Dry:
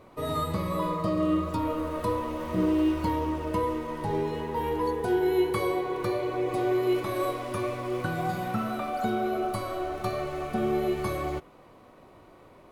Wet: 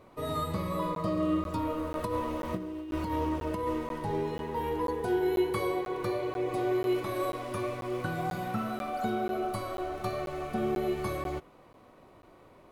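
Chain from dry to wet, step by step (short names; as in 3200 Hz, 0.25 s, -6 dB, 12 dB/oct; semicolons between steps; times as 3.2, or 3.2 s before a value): 1.95–3.99 negative-ratio compressor -28 dBFS, ratio -0.5; crackling interface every 0.49 s, samples 512, zero, from 0.95; gain -3 dB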